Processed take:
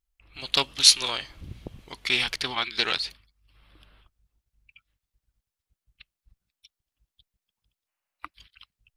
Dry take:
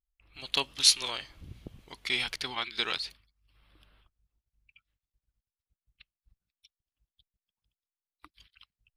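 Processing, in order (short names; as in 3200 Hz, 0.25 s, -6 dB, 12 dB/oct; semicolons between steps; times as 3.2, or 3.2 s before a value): spectral gain 7.88–8.34, 530–3000 Hz +9 dB; Doppler distortion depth 0.3 ms; gain +6 dB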